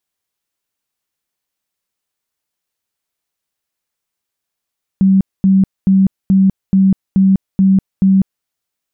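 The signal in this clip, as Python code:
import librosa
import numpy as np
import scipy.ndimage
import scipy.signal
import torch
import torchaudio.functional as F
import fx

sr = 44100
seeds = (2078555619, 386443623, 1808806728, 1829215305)

y = fx.tone_burst(sr, hz=192.0, cycles=38, every_s=0.43, bursts=8, level_db=-6.5)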